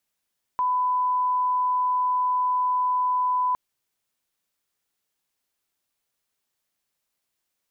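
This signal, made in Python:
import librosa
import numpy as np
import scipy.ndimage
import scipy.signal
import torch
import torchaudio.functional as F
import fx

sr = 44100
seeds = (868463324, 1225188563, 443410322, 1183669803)

y = fx.lineup_tone(sr, length_s=2.96, level_db=-20.0)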